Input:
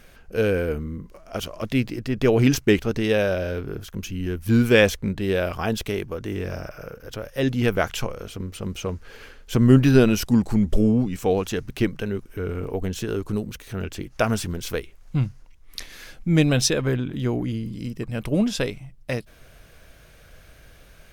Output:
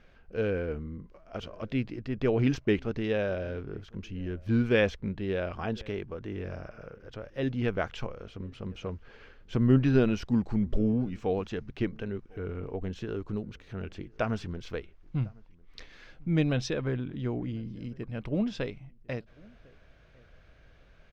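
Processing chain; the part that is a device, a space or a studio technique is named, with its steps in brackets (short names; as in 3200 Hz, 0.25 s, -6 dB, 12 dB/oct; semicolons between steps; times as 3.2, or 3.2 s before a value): shout across a valley (air absorption 190 m; outdoor echo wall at 180 m, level -26 dB); gain -7.5 dB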